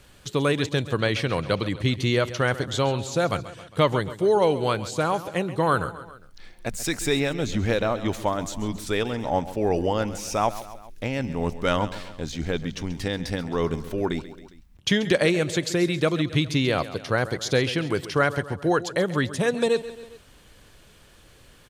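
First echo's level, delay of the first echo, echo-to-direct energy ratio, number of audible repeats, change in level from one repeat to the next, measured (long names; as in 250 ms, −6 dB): −15.0 dB, 135 ms, −13.5 dB, 3, −5.0 dB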